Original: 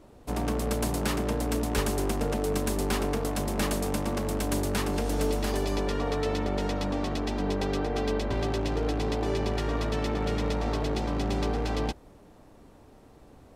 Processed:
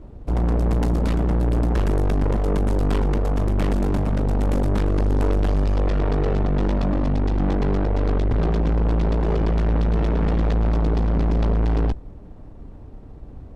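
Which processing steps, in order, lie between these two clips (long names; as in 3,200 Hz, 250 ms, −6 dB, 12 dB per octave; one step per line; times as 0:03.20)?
RIAA equalisation playback
harmonic generator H 6 −13 dB, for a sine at −3 dBFS
soft clipping −18.5 dBFS, distortion −8 dB
level +2 dB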